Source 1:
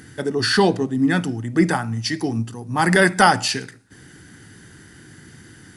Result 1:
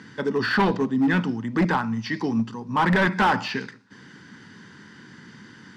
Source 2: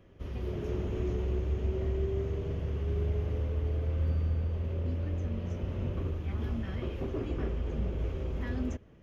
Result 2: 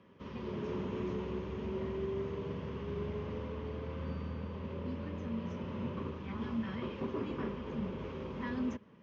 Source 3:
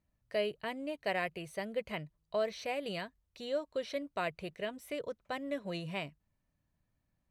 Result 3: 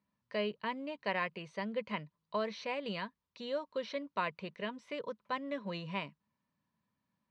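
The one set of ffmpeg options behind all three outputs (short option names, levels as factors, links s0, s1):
-filter_complex "[0:a]highpass=170,equalizer=f=210:t=q:w=4:g=7,equalizer=f=330:t=q:w=4:g=-5,equalizer=f=700:t=q:w=4:g=-8,equalizer=f=1000:t=q:w=4:g=10,lowpass=f=5500:w=0.5412,lowpass=f=5500:w=1.3066,volume=6.31,asoftclip=hard,volume=0.158,acrossover=split=3100[s0][s1];[s1]acompressor=threshold=0.00708:ratio=4:attack=1:release=60[s2];[s0][s2]amix=inputs=2:normalize=0"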